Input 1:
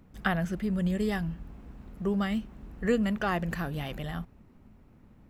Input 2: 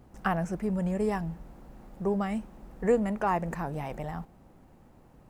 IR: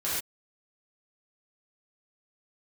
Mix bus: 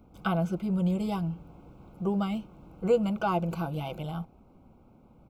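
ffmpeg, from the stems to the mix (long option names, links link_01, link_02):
-filter_complex "[0:a]equalizer=frequency=8800:width=0.32:gain=-3.5,volume=-1dB[link_01];[1:a]lowpass=1100,adelay=6.4,volume=-2dB[link_02];[link_01][link_02]amix=inputs=2:normalize=0,asuperstop=centerf=1800:order=8:qfactor=3,lowshelf=frequency=140:gain=-4.5"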